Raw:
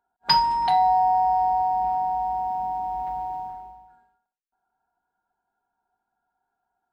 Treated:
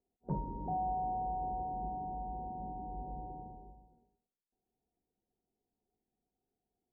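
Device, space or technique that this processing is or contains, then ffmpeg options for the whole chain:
under water: -af "lowpass=f=430:w=0.5412,lowpass=f=430:w=1.3066,equalizer=f=520:t=o:w=0.5:g=7,volume=2dB"

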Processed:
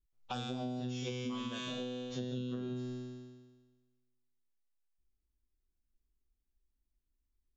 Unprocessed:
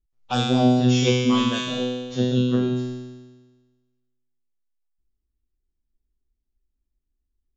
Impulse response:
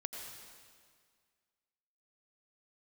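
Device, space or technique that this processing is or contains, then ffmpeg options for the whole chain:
serial compression, peaks first: -af "acompressor=threshold=-27dB:ratio=5,acompressor=threshold=-39dB:ratio=1.5,volume=-5dB"

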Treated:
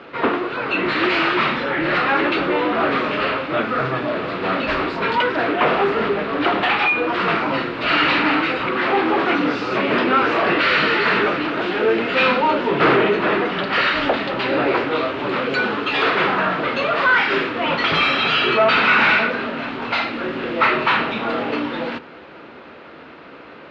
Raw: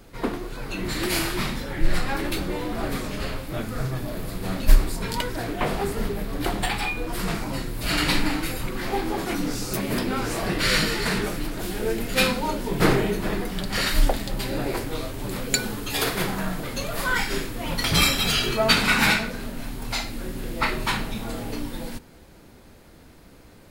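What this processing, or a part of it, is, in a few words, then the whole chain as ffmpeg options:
overdrive pedal into a guitar cabinet: -filter_complex "[0:a]asplit=2[a][b];[b]highpass=f=720:p=1,volume=27dB,asoftclip=type=tanh:threshold=-2dB[c];[a][c]amix=inputs=2:normalize=0,lowpass=f=1.3k:p=1,volume=-6dB,highpass=100,equalizer=f=110:t=q:w=4:g=-7,equalizer=f=190:t=q:w=4:g=-5,equalizer=f=780:t=q:w=4:g=-3,equalizer=f=1.3k:t=q:w=4:g=5,equalizer=f=2.7k:t=q:w=4:g=5,lowpass=f=3.9k:w=0.5412,lowpass=f=3.9k:w=1.3066,volume=-2.5dB"

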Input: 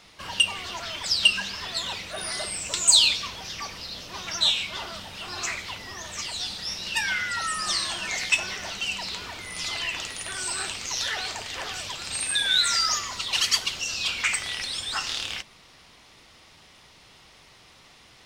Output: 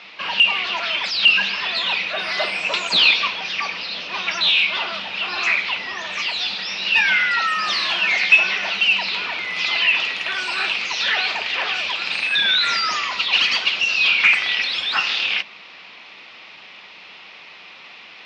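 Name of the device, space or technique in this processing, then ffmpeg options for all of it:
overdrive pedal into a guitar cabinet: -filter_complex "[0:a]asplit=2[a][b];[b]highpass=f=720:p=1,volume=21dB,asoftclip=type=tanh:threshold=-4.5dB[c];[a][c]amix=inputs=2:normalize=0,lowpass=f=5k:p=1,volume=-6dB,highpass=95,equalizer=f=130:t=q:w=4:g=-9,equalizer=f=190:t=q:w=4:g=6,equalizer=f=2.5k:t=q:w=4:g=9,lowpass=f=4.5k:w=0.5412,lowpass=f=4.5k:w=1.3066,asettb=1/sr,asplit=3[d][e][f];[d]atrim=end=2.384[g];[e]atrim=start=2.38:end=3.28,asetpts=PTS-STARTPTS,afade=t=in:d=0.004:c=qsin,afade=t=out:st=0.896:d=0.004:c=qsin,equalizer=f=720:t=o:w=2.2:g=5[h];[f]atrim=start=3.276[i];[g][h]acrossfade=d=0.004:c1=hsin:c2=qsin[j];[j][i]acrossfade=d=0.004:c1=qsin:c2=hsin,volume=-4dB"

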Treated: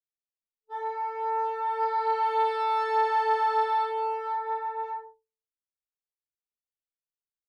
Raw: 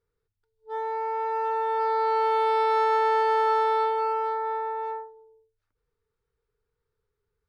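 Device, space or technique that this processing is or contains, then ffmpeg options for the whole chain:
double-tracked vocal: -filter_complex "[0:a]asplit=2[a][b];[b]adelay=17,volume=-11dB[c];[a][c]amix=inputs=2:normalize=0,flanger=delay=19.5:depth=7.3:speed=0.37,agate=range=-33dB:threshold=-41dB:ratio=3:detection=peak"

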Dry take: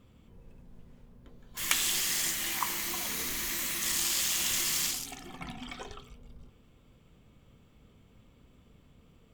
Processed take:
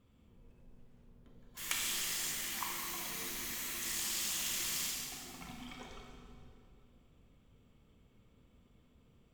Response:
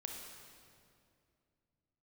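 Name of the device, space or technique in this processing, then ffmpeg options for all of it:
stairwell: -filter_complex "[1:a]atrim=start_sample=2205[a];[0:a][a]afir=irnorm=-1:irlink=0,volume=-5dB"

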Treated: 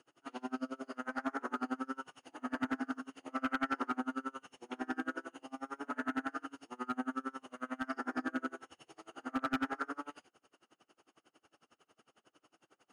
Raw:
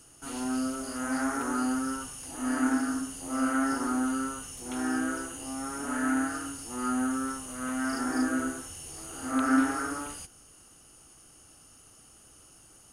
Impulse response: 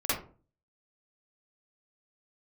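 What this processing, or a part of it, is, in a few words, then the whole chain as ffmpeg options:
helicopter radio: -filter_complex "[0:a]highpass=310,lowpass=2.7k,aeval=exprs='val(0)*pow(10,-31*(0.5-0.5*cos(2*PI*11*n/s))/20)':c=same,asoftclip=type=hard:threshold=-28.5dB,asettb=1/sr,asplit=3[a][b][c];[a]atrim=end=3.114[d];[b]atrim=start=3.11:end=4,asetpts=PTS-STARTPTS,afade=t=in:d=0.004:c=qsin,afade=t=out:st=0.886:d=0.004:c=qsin,equalizer=f=2.2k:w=1.3:g=5[e];[c]atrim=start=3.996[f];[d][e]acrossfade=d=0.004:c1=hsin:c2=qsin[g];[g][f]acrossfade=d=0.004:c1=qsin:c2=hsin,volume=1dB"

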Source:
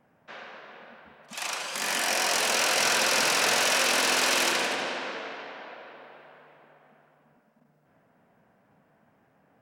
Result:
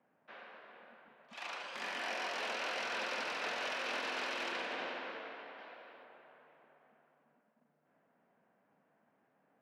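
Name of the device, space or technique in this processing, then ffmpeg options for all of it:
DJ mixer with the lows and highs turned down: -filter_complex "[0:a]asettb=1/sr,asplit=3[a][b][c];[a]atrim=end=5.584[d];[b]atrim=start=5.58:end=6.04,asetpts=PTS-STARTPTS,afade=t=in:d=0.004:c=qsin,afade=t=out:st=0.456:d=0.004:c=qsin,aemphasis=mode=production:type=50fm[e];[c]atrim=start=6.036[f];[d][e]acrossfade=d=0.004:c1=hsin:c2=qsin[g];[g][f]acrossfade=d=0.004:c1=qsin:c2=hsin,acrossover=split=170 4100:gain=0.141 1 0.0794[h][i][j];[h][i][j]amix=inputs=3:normalize=0,alimiter=limit=-20dB:level=0:latency=1:release=150,volume=-9dB"

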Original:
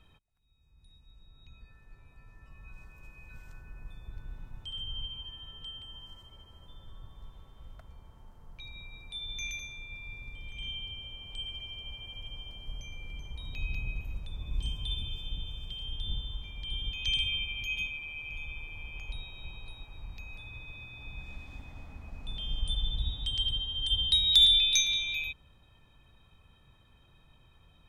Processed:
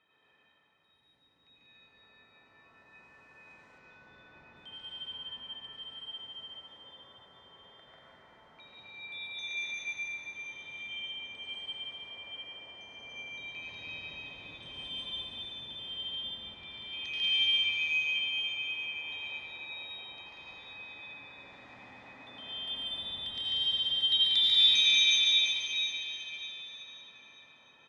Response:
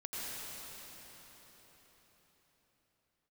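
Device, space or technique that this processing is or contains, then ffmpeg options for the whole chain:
station announcement: -filter_complex "[0:a]highpass=350,lowpass=4.3k,equalizer=f=1.9k:t=o:w=0.23:g=10.5,aecho=1:1:142.9|189.5:0.891|0.708[a];[1:a]atrim=start_sample=2205[b];[a][b]afir=irnorm=-1:irlink=0,asettb=1/sr,asplit=3[c][d][e];[c]atrim=end=3.784[f];[d]atrim=start=3.78:end=4.57,asetpts=PTS-STARTPTS,afade=t=in:d=0.004:c=qsin,afade=t=out:st=0.786:d=0.004:c=qsin,lowpass=f=6.5k:w=0.5412,lowpass=f=6.5k:w=1.3066[g];[e]atrim=start=4.566[h];[f][g]acrossfade=d=0.004:c1=hsin:c2=qsin[i];[i][h]acrossfade=d=0.004:c1=qsin:c2=hsin,volume=-1dB"

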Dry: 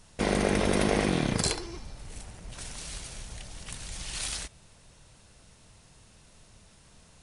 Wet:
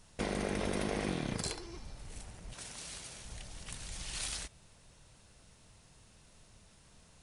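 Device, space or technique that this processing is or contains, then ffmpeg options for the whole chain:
clipper into limiter: -filter_complex "[0:a]asettb=1/sr,asplit=3[a][b][c];[a]atrim=end=2.534[d];[b]atrim=start=2.53:end=3.25,asetpts=PTS-STARTPTS,afade=t=in:d=0.004:c=qsin,afade=t=out:st=0.716:d=0.004:c=qsin,highpass=f=150:p=1[e];[c]atrim=start=3.246[f];[d][e]acrossfade=d=0.004:c1=hsin:c2=qsin[g];[g][f]acrossfade=d=0.004:c1=qsin:c2=hsin,asoftclip=type=hard:threshold=-14dB,alimiter=limit=-19.5dB:level=0:latency=1:release=374,volume=-4.5dB"

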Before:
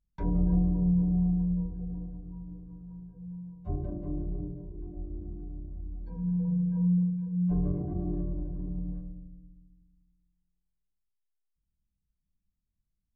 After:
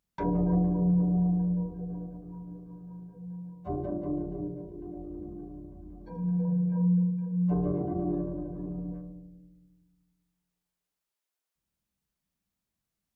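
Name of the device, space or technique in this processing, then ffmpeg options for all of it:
filter by subtraction: -filter_complex "[0:a]asplit=2[a][b];[b]lowpass=560,volume=-1[c];[a][c]amix=inputs=2:normalize=0,volume=7.5dB"

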